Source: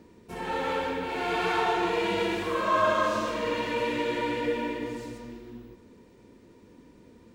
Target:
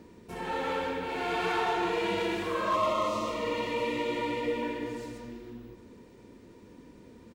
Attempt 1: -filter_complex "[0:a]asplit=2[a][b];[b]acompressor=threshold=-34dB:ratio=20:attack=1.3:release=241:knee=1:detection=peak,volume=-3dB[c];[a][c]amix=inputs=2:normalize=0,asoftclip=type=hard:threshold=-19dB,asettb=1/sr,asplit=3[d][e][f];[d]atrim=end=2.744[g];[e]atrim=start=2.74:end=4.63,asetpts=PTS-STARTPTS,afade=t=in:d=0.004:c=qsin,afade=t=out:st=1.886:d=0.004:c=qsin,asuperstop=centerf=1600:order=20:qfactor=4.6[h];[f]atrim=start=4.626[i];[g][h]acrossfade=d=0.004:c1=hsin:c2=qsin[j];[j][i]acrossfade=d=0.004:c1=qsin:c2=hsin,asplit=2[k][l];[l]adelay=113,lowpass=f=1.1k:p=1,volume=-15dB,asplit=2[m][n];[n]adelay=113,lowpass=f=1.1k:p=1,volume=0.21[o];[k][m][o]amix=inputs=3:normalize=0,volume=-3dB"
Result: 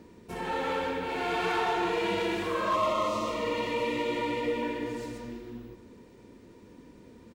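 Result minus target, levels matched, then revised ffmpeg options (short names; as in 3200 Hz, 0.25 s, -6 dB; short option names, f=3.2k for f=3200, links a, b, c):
compressor: peak gain reduction -9.5 dB
-filter_complex "[0:a]asplit=2[a][b];[b]acompressor=threshold=-44dB:ratio=20:attack=1.3:release=241:knee=1:detection=peak,volume=-3dB[c];[a][c]amix=inputs=2:normalize=0,asoftclip=type=hard:threshold=-19dB,asettb=1/sr,asplit=3[d][e][f];[d]atrim=end=2.744[g];[e]atrim=start=2.74:end=4.63,asetpts=PTS-STARTPTS,afade=t=in:d=0.004:c=qsin,afade=t=out:st=1.886:d=0.004:c=qsin,asuperstop=centerf=1600:order=20:qfactor=4.6[h];[f]atrim=start=4.626[i];[g][h]acrossfade=d=0.004:c1=hsin:c2=qsin[j];[j][i]acrossfade=d=0.004:c1=qsin:c2=hsin,asplit=2[k][l];[l]adelay=113,lowpass=f=1.1k:p=1,volume=-15dB,asplit=2[m][n];[n]adelay=113,lowpass=f=1.1k:p=1,volume=0.21[o];[k][m][o]amix=inputs=3:normalize=0,volume=-3dB"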